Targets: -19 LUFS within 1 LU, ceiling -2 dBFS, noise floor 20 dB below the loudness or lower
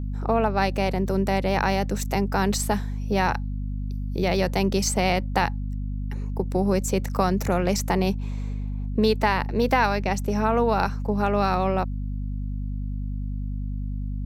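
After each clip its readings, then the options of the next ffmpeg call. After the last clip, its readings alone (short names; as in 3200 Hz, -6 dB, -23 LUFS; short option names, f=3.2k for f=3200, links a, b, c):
hum 50 Hz; harmonics up to 250 Hz; hum level -26 dBFS; loudness -25.0 LUFS; peak -6.0 dBFS; loudness target -19.0 LUFS
-> -af "bandreject=f=50:t=h:w=6,bandreject=f=100:t=h:w=6,bandreject=f=150:t=h:w=6,bandreject=f=200:t=h:w=6,bandreject=f=250:t=h:w=6"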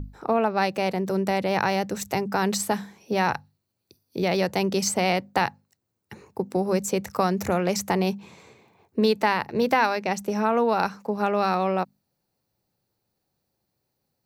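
hum none; loudness -25.0 LUFS; peak -7.0 dBFS; loudness target -19.0 LUFS
-> -af "volume=6dB,alimiter=limit=-2dB:level=0:latency=1"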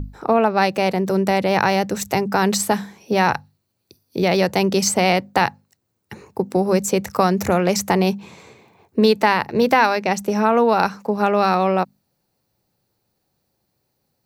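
loudness -19.0 LUFS; peak -2.0 dBFS; noise floor -73 dBFS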